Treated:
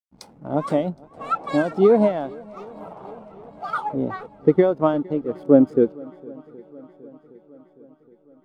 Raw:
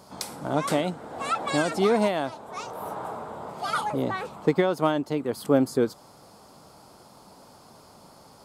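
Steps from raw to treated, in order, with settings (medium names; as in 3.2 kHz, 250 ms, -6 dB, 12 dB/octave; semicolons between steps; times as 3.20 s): hysteresis with a dead band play -32 dBFS; shuffle delay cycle 767 ms, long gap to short 1.5:1, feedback 66%, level -16.5 dB; spectral contrast expander 1.5:1; trim +7 dB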